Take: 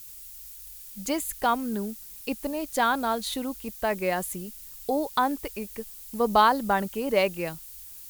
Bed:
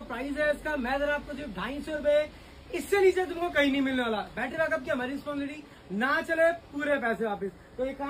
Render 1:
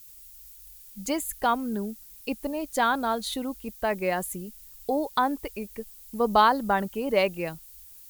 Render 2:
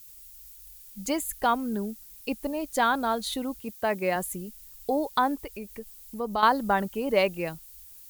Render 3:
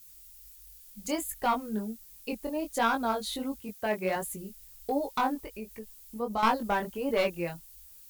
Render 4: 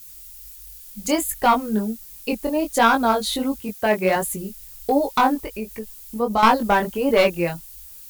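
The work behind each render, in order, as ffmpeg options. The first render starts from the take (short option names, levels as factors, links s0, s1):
-af "afftdn=nr=6:nf=-44"
-filter_complex "[0:a]asettb=1/sr,asplit=3[s0][s1][s2];[s0]atrim=end=3.594[s3];[s1]atrim=start=3.59:end=4.16,asetpts=PTS-STARTPTS,afade=t=in:d=0.004:c=qsin,afade=t=out:st=0.566:d=0.004:c=qsin,highpass=f=70:w=0.5412,highpass=f=70:w=1.3066[s4];[s2]atrim=start=4.156[s5];[s3][s4]acrossfade=d=0.004:c1=hsin:c2=qsin[s6];[s6][s5]acrossfade=d=0.004:c1=qsin:c2=hsin,asettb=1/sr,asplit=3[s7][s8][s9];[s7]atrim=end=5.354[s10];[s8]atrim=start=5.35:end=6.43,asetpts=PTS-STARTPTS,afade=t=in:d=0.004:c=qsin,afade=t=out:st=1.076:d=0.004:c=qsin,acompressor=threshold=0.0112:ratio=1.5:attack=3.2:release=140:knee=1:detection=peak[s11];[s9]atrim=start=6.426[s12];[s10][s11]acrossfade=d=0.004:c1=hsin:c2=qsin[s13];[s13][s12]acrossfade=d=0.004:c1=qsin:c2=hsin"
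-af "aeval=exprs='clip(val(0),-1,0.106)':c=same,flanger=delay=17.5:depth=6.2:speed=1.4"
-af "volume=3.35,alimiter=limit=0.891:level=0:latency=1"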